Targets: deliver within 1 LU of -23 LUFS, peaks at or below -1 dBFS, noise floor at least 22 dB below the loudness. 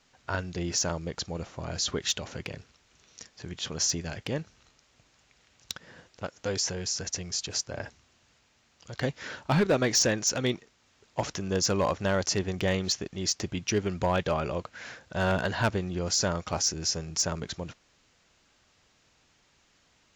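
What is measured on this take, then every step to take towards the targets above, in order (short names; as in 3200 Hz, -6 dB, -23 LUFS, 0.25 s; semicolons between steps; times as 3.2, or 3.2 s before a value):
clipped 0.3%; flat tops at -18.0 dBFS; loudness -29.5 LUFS; peak -18.0 dBFS; loudness target -23.0 LUFS
-> clip repair -18 dBFS; gain +6.5 dB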